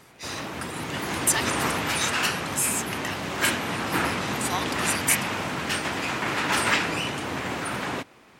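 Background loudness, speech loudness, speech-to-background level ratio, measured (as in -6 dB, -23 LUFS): -26.5 LUFS, -29.5 LUFS, -3.0 dB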